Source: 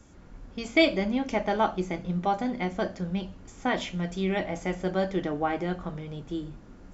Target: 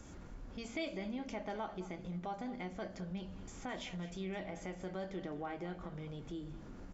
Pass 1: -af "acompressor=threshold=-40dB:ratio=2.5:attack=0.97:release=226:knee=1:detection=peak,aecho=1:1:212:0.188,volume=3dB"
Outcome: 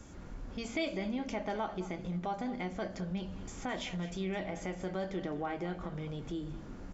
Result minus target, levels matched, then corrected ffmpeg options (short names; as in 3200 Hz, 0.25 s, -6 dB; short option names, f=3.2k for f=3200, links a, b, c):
compressor: peak gain reduction -5.5 dB
-af "acompressor=threshold=-49dB:ratio=2.5:attack=0.97:release=226:knee=1:detection=peak,aecho=1:1:212:0.188,volume=3dB"